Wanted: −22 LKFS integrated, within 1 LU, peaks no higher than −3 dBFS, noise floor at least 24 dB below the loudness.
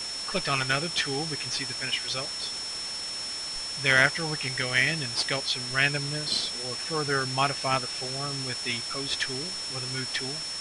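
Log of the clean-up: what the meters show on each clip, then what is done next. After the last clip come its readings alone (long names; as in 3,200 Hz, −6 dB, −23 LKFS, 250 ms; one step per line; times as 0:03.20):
interfering tone 5,400 Hz; level of the tone −33 dBFS; background noise floor −35 dBFS; target noise floor −51 dBFS; integrated loudness −27.0 LKFS; sample peak −6.5 dBFS; target loudness −22.0 LKFS
→ notch filter 5,400 Hz, Q 30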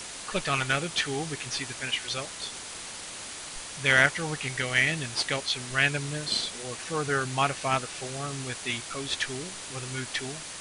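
interfering tone none found; background noise floor −40 dBFS; target noise floor −53 dBFS
→ noise reduction from a noise print 13 dB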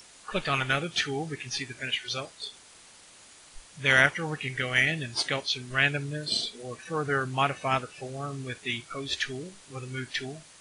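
background noise floor −53 dBFS; integrated loudness −28.5 LKFS; sample peak −6.5 dBFS; target loudness −22.0 LKFS
→ level +6.5 dB
brickwall limiter −3 dBFS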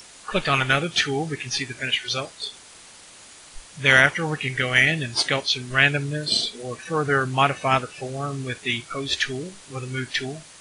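integrated loudness −22.5 LKFS; sample peak −3.0 dBFS; background noise floor −47 dBFS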